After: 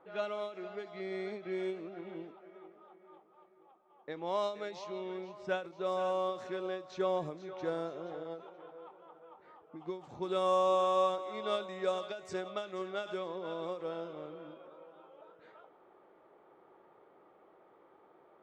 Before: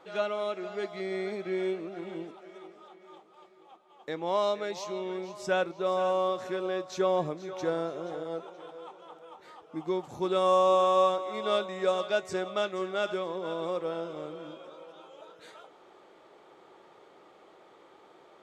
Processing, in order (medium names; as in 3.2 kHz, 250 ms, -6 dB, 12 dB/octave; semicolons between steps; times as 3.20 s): level-controlled noise filter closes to 1.5 kHz, open at -25 dBFS; endings held to a fixed fall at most 140 dB/s; trim -5.5 dB